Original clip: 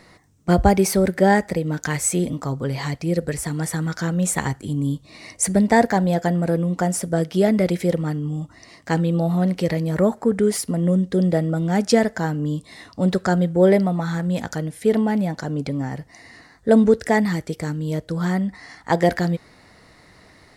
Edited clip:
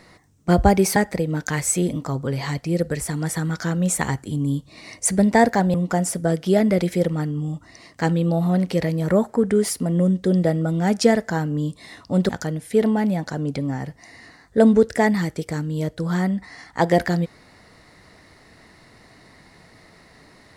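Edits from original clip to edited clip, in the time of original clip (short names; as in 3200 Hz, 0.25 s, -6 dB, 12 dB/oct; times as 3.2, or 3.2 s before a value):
0.96–1.33 cut
6.11–6.62 cut
13.17–14.4 cut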